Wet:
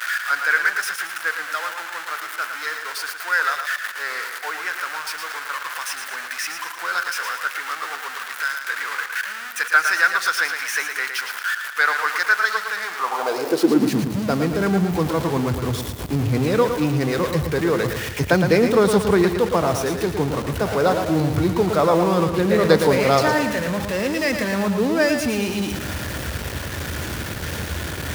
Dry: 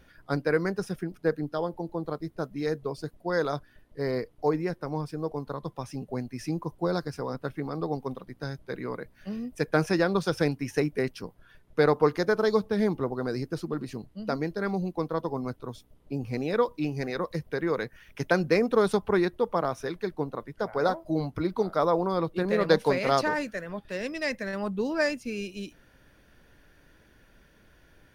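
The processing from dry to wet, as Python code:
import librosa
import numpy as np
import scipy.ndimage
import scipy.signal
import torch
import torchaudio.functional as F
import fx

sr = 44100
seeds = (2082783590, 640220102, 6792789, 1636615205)

y = x + 0.5 * 10.0 ** (-28.5 / 20.0) * np.sign(x)
y = fx.filter_sweep_highpass(y, sr, from_hz=1500.0, to_hz=80.0, start_s=12.9, end_s=14.3, q=3.5)
y = fx.echo_feedback(y, sr, ms=112, feedback_pct=46, wet_db=-7.0)
y = y * 10.0 ** (4.5 / 20.0)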